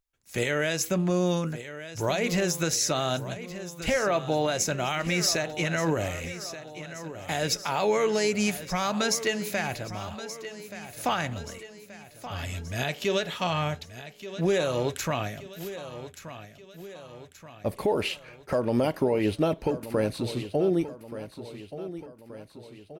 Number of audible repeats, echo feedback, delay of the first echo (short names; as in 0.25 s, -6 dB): 4, 52%, 1.178 s